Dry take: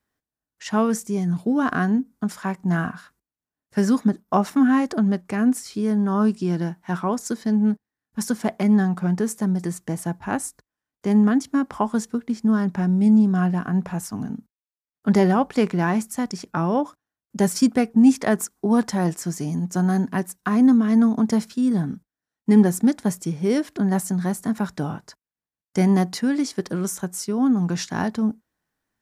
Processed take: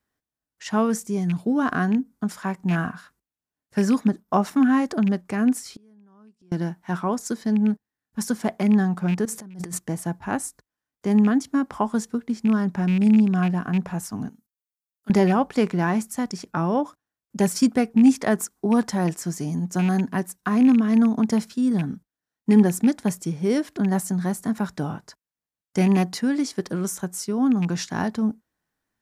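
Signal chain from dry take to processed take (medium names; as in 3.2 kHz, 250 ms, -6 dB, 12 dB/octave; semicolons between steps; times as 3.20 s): rattle on loud lows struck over -19 dBFS, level -24 dBFS; 5.67–6.52 s: inverted gate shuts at -28 dBFS, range -32 dB; 9.25–9.79 s: compressor with a negative ratio -34 dBFS, ratio -1; 14.29–15.10 s: pre-emphasis filter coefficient 0.9; trim -1 dB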